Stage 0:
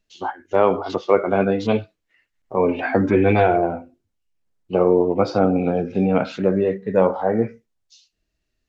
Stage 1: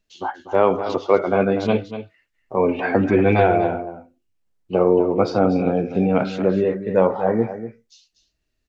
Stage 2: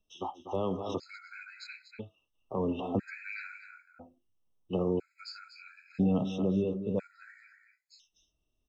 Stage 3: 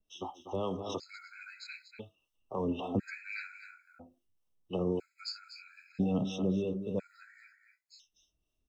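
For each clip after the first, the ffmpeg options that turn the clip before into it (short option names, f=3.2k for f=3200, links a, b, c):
-af "aecho=1:1:242:0.266"
-filter_complex "[0:a]acrossover=split=250|3000[a][b][c];[b]acompressor=threshold=-32dB:ratio=3[d];[a][d][c]amix=inputs=3:normalize=0,afftfilt=real='re*gt(sin(2*PI*0.5*pts/sr)*(1-2*mod(floor(b*sr/1024/1300),2)),0)':imag='im*gt(sin(2*PI*0.5*pts/sr)*(1-2*mod(floor(b*sr/1024/1300),2)),0)':win_size=1024:overlap=0.75,volume=-4.5dB"
-filter_complex "[0:a]acrossover=split=470[a][b];[a]aeval=exprs='val(0)*(1-0.5/2+0.5/2*cos(2*PI*3.7*n/s))':c=same[c];[b]aeval=exprs='val(0)*(1-0.5/2-0.5/2*cos(2*PI*3.7*n/s))':c=same[d];[c][d]amix=inputs=2:normalize=0,adynamicequalizer=threshold=0.001:dfrequency=3400:dqfactor=0.7:tfrequency=3400:tqfactor=0.7:attack=5:release=100:ratio=0.375:range=3.5:mode=boostabove:tftype=highshelf"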